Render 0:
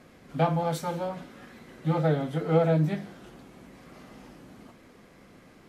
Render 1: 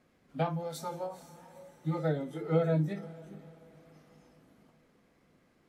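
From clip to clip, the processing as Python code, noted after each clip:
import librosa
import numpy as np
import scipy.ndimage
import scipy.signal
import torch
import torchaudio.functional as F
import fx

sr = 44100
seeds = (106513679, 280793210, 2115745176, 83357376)

y = fx.echo_diffused(x, sr, ms=463, feedback_pct=44, wet_db=-11.0)
y = fx.noise_reduce_blind(y, sr, reduce_db=10)
y = fx.end_taper(y, sr, db_per_s=140.0)
y = y * librosa.db_to_amplitude(-4.5)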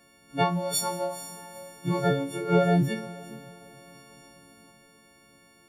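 y = fx.freq_snap(x, sr, grid_st=4)
y = y * librosa.db_to_amplitude(6.5)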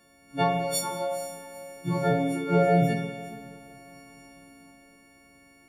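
y = fx.rev_spring(x, sr, rt60_s=1.2, pass_ms=(47,), chirp_ms=65, drr_db=1.0)
y = y * librosa.db_to_amplitude(-1.5)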